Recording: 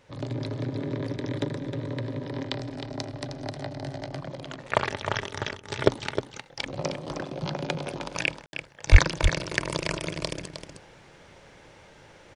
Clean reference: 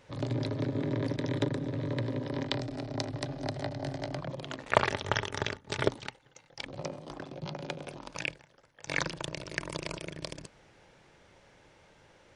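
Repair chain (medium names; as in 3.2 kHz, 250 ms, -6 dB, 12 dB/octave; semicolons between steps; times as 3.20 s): 8.91–9.03 s: high-pass 140 Hz 24 dB/octave; room tone fill 8.46–8.53 s; inverse comb 311 ms -8.5 dB; trim 0 dB, from 5.86 s -7.5 dB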